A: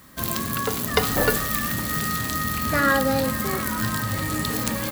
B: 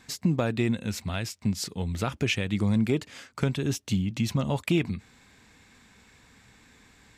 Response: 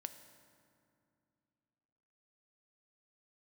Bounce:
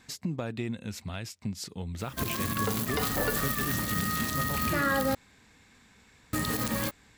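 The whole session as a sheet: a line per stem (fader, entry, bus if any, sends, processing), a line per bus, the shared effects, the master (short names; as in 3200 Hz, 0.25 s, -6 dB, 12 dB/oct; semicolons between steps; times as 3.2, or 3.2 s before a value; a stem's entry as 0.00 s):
-3.0 dB, 2.00 s, muted 5.15–6.33, no send, dry
-2.5 dB, 0.00 s, no send, compressor 1.5:1, threshold -36 dBFS, peak gain reduction 6.5 dB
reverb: off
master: limiter -18 dBFS, peak gain reduction 11.5 dB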